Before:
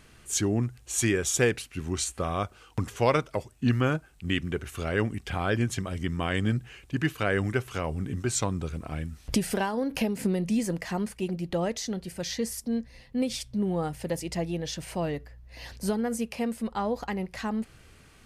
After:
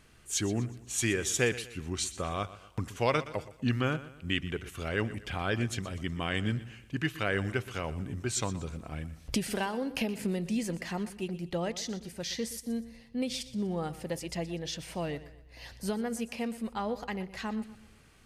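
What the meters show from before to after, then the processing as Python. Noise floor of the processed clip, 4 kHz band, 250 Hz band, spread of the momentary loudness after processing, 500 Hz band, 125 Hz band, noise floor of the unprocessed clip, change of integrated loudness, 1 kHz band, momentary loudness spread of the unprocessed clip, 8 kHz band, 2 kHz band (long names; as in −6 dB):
−56 dBFS, −1.0 dB, −5.0 dB, 9 LU, −4.5 dB, −5.0 dB, −56 dBFS, −4.0 dB, −4.0 dB, 9 LU, −3.5 dB, −2.0 dB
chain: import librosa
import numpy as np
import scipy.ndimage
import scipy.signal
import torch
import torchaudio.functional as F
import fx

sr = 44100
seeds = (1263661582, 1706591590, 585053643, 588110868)

p1 = fx.dynamic_eq(x, sr, hz=3100.0, q=0.81, threshold_db=-45.0, ratio=4.0, max_db=5)
p2 = p1 + fx.echo_feedback(p1, sr, ms=122, feedback_pct=40, wet_db=-16, dry=0)
y = F.gain(torch.from_numpy(p2), -5.0).numpy()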